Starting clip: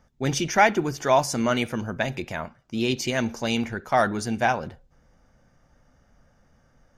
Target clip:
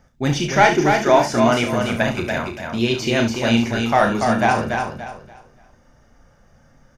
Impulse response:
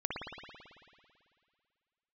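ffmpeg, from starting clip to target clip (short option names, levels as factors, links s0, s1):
-filter_complex "[0:a]acontrast=72,asplit=2[s0][s1];[s1]aecho=0:1:288|576|864|1152:0.562|0.157|0.0441|0.0123[s2];[s0][s2]amix=inputs=2:normalize=0,flanger=delay=0.4:depth=3.1:regen=-71:speed=0.43:shape=triangular,asplit=2[s3][s4];[s4]aecho=0:1:34|70:0.447|0.282[s5];[s3][s5]amix=inputs=2:normalize=0,acrossover=split=4800[s6][s7];[s7]acompressor=threshold=0.0112:ratio=4:attack=1:release=60[s8];[s6][s8]amix=inputs=2:normalize=0,volume=1.33"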